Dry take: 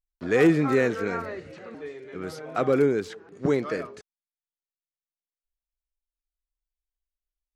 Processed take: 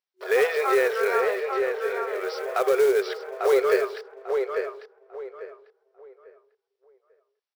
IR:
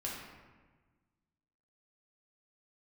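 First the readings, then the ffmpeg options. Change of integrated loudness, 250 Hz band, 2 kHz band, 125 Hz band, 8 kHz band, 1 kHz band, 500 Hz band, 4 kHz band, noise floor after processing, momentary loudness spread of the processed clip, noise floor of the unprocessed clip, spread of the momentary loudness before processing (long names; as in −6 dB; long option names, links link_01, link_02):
0.0 dB, below −10 dB, +4.0 dB, below −25 dB, can't be measured, +5.5 dB, +4.0 dB, +5.5 dB, −84 dBFS, 18 LU, below −85 dBFS, 20 LU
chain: -filter_complex "[0:a]afftfilt=real='re*between(b*sr/4096,370,5900)':imag='im*between(b*sr/4096,370,5900)':win_size=4096:overlap=0.75,acontrast=65,alimiter=limit=-13dB:level=0:latency=1:release=119,acrusher=bits=5:mode=log:mix=0:aa=0.000001,asplit=2[link_01][link_02];[link_02]adelay=846,lowpass=frequency=2100:poles=1,volume=-4dB,asplit=2[link_03][link_04];[link_04]adelay=846,lowpass=frequency=2100:poles=1,volume=0.28,asplit=2[link_05][link_06];[link_06]adelay=846,lowpass=frequency=2100:poles=1,volume=0.28,asplit=2[link_07][link_08];[link_08]adelay=846,lowpass=frequency=2100:poles=1,volume=0.28[link_09];[link_03][link_05][link_07][link_09]amix=inputs=4:normalize=0[link_10];[link_01][link_10]amix=inputs=2:normalize=0"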